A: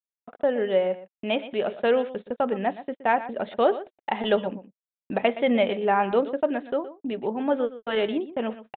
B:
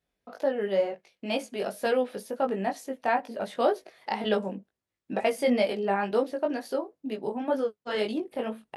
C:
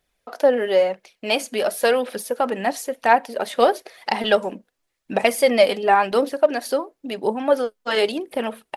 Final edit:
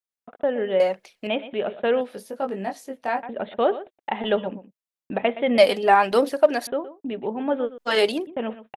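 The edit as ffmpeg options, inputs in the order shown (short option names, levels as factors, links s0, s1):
-filter_complex "[2:a]asplit=3[s0][s1][s2];[0:a]asplit=5[s3][s4][s5][s6][s7];[s3]atrim=end=0.802[s8];[s0]atrim=start=0.798:end=1.272[s9];[s4]atrim=start=1.268:end=2.012[s10];[1:a]atrim=start=2.008:end=3.232[s11];[s5]atrim=start=3.228:end=5.582[s12];[s1]atrim=start=5.578:end=6.672[s13];[s6]atrim=start=6.668:end=7.782[s14];[s2]atrim=start=7.778:end=8.272[s15];[s7]atrim=start=8.268[s16];[s8][s9]acrossfade=d=0.004:c1=hsin:c2=hsin[s17];[s17][s10]acrossfade=d=0.004:c1=hsin:c2=hsin[s18];[s18][s11]acrossfade=d=0.004:c1=hsin:c2=hsin[s19];[s19][s12]acrossfade=d=0.004:c1=hsin:c2=hsin[s20];[s20][s13]acrossfade=d=0.004:c1=hsin:c2=hsin[s21];[s21][s14]acrossfade=d=0.004:c1=hsin:c2=hsin[s22];[s22][s15]acrossfade=d=0.004:c1=hsin:c2=hsin[s23];[s23][s16]acrossfade=d=0.004:c1=hsin:c2=hsin"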